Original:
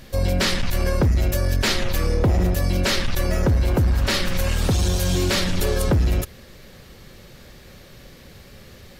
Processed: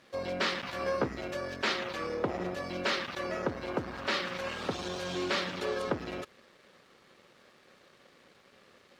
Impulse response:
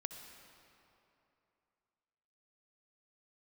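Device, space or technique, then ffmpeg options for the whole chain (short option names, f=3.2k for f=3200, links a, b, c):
pocket radio on a weak battery: -filter_complex "[0:a]highpass=290,lowpass=3.8k,aeval=exprs='sgn(val(0))*max(abs(val(0))-0.00178,0)':c=same,equalizer=f=1.2k:t=o:w=0.5:g=4.5,asettb=1/sr,asplit=3[a][b][c];[a]atrim=end=0.654[d];[b]atrim=start=0.65:end=1.18,asetpts=PTS-STARTPTS,afade=t=in:d=0.004:c=qsin,afade=t=out:st=0.526:d=0.004:c=qsin,asplit=2[e][f];[f]adelay=15,volume=-3.5dB[g];[e][g]amix=inputs=2:normalize=0,atrim=end_sample=23373[h];[c]atrim=start=1.176[i];[d][h]acrossfade=d=0.004:c1=hsin:c2=qsin[j];[j][i]acrossfade=d=0.004:c1=qsin:c2=hsin,volume=-7dB"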